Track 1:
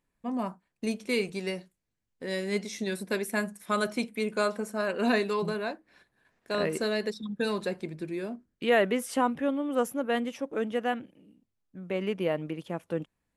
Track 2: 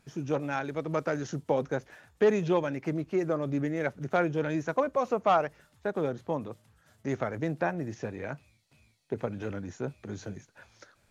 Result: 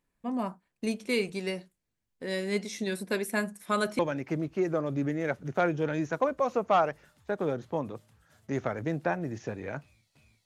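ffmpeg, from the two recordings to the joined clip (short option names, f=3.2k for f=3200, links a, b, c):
-filter_complex "[0:a]apad=whole_dur=10.45,atrim=end=10.45,atrim=end=3.992[a];[1:a]atrim=start=2.548:end=9.01[b];[a][b]acrossfade=d=0.004:c1=hsin:c2=hsin"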